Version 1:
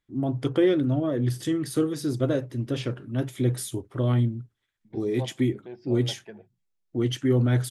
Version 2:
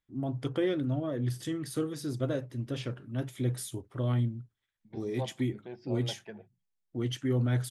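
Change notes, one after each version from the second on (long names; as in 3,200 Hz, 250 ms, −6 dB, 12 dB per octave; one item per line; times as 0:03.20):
first voice −5.5 dB
master: add parametric band 350 Hz −3.5 dB 0.8 octaves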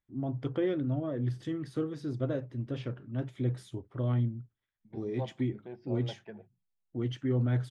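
master: add head-to-tape spacing loss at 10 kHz 21 dB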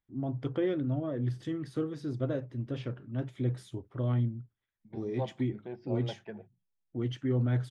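second voice +3.0 dB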